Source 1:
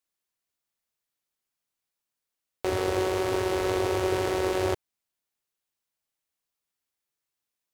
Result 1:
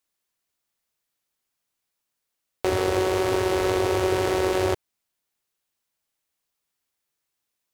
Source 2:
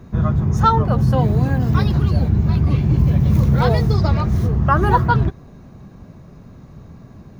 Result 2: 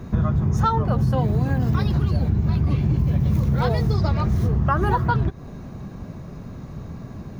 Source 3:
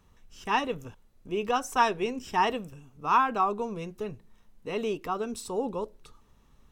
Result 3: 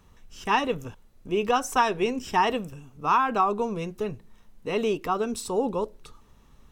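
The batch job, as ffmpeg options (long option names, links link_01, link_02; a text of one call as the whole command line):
ffmpeg -i in.wav -af "acompressor=threshold=-22dB:ratio=6,volume=5dB" out.wav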